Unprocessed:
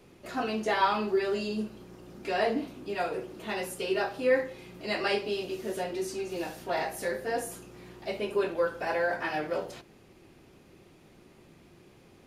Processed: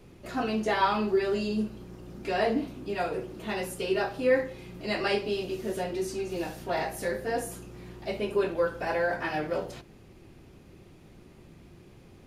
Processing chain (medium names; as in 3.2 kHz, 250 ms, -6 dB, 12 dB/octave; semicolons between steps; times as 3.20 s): bass shelf 160 Hz +11 dB